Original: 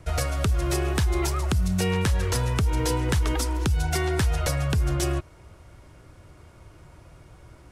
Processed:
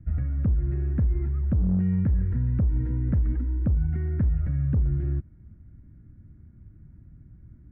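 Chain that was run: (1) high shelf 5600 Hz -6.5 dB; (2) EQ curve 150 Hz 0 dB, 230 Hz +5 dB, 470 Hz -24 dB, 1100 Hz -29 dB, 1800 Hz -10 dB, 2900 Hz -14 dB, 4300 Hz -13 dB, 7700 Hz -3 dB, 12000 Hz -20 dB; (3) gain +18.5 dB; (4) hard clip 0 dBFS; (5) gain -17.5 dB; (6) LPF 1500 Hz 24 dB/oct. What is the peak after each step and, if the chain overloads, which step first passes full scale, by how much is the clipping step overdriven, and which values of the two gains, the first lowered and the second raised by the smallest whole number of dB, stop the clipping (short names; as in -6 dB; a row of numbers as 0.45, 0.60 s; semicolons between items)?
-13.5, -13.5, +5.0, 0.0, -17.5, -17.0 dBFS; step 3, 5.0 dB; step 3 +13.5 dB, step 5 -12.5 dB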